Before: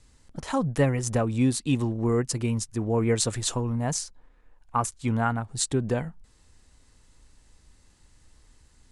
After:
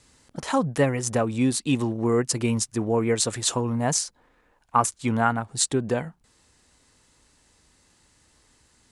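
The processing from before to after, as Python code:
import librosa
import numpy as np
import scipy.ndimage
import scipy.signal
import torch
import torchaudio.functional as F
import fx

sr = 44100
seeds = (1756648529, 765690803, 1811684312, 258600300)

y = fx.highpass(x, sr, hz=210.0, slope=6)
y = fx.rider(y, sr, range_db=10, speed_s=0.5)
y = y * 10.0 ** (4.5 / 20.0)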